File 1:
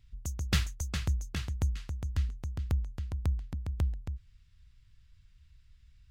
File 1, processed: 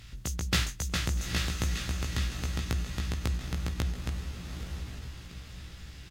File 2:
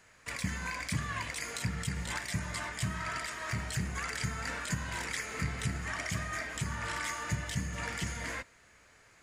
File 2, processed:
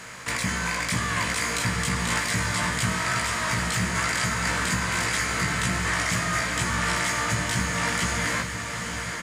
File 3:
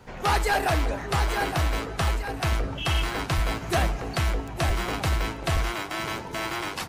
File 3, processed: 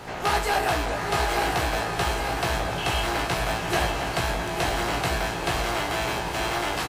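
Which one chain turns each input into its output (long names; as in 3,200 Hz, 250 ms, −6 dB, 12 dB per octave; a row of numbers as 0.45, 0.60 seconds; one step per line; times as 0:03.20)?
compressor on every frequency bin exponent 0.6
low-shelf EQ 130 Hz −9 dB
double-tracking delay 17 ms −4 dB
feedback delay with all-pass diffusion 870 ms, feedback 43%, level −6 dB
every ending faded ahead of time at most 200 dB per second
normalise the peak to −12 dBFS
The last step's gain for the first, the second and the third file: +1.5, +5.5, −3.5 decibels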